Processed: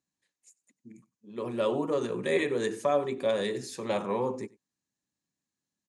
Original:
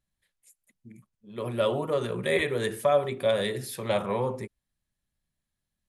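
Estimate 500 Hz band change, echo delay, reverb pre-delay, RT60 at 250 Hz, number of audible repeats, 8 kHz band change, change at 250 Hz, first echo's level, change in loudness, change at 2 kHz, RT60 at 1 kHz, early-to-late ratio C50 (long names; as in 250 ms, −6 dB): −2.0 dB, 94 ms, no reverb audible, no reverb audible, 1, −3.0 dB, +1.0 dB, −23.0 dB, −2.5 dB, −4.0 dB, no reverb audible, no reverb audible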